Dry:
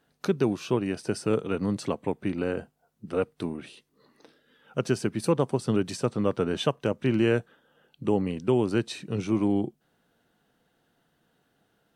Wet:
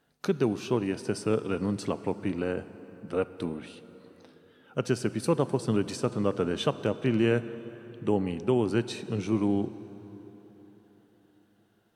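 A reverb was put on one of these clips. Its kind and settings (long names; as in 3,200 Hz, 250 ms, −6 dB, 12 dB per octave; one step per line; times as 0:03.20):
dense smooth reverb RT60 4.3 s, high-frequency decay 0.65×, DRR 13.5 dB
level −1.5 dB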